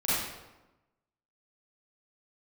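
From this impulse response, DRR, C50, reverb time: -11.5 dB, -4.5 dB, 1.1 s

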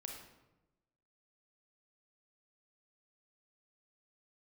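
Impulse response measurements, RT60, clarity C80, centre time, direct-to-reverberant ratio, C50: 1.0 s, 6.0 dB, 41 ms, 1.0 dB, 3.5 dB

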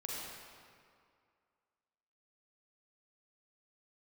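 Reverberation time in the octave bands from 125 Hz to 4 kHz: 2.0, 2.2, 2.2, 2.3, 1.9, 1.5 s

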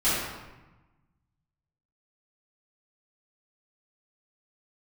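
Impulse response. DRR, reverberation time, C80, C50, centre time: -14.5 dB, 1.1 s, 1.5 dB, -1.5 dB, 88 ms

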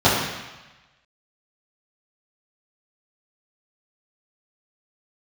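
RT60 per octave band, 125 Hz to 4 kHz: 1.2, 1.0, 1.0, 1.2, 1.2, 1.2 s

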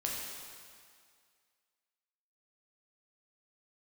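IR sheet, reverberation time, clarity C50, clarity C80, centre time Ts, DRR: 2.1 s, 0.0 dB, 1.5 dB, 0.106 s, -3.0 dB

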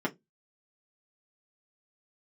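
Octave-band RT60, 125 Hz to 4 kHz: 0.30, 0.25, 0.20, 0.15, 0.15, 0.15 s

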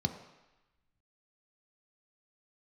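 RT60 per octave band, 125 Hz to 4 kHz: 0.85, 0.85, 0.95, 1.1, 1.2, 1.1 s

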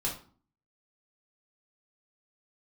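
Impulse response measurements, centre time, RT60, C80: 25 ms, 0.45 s, 13.5 dB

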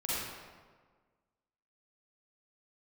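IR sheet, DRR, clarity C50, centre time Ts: -9.0 dB, -5.5 dB, 0.124 s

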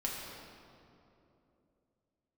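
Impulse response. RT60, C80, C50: 2.9 s, 1.5 dB, 0.0 dB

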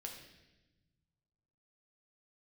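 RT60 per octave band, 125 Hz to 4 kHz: 2.3, 1.8, 1.2, 0.90, 1.1, 1.1 s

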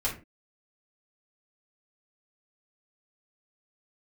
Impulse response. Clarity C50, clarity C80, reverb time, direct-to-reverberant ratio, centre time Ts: 9.0 dB, 15.5 dB, 0.30 s, -6.5 dB, 20 ms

